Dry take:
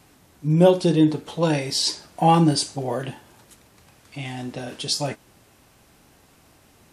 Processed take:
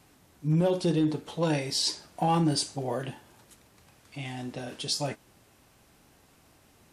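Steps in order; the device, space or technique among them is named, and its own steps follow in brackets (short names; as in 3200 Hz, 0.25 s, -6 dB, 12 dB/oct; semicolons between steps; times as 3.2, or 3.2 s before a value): limiter into clipper (limiter -11.5 dBFS, peak gain reduction 7.5 dB; hard clip -13 dBFS, distortion -29 dB); gain -5 dB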